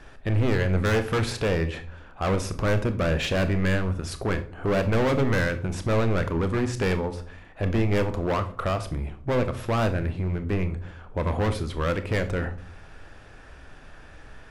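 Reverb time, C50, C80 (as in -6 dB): 0.50 s, 13.5 dB, 18.0 dB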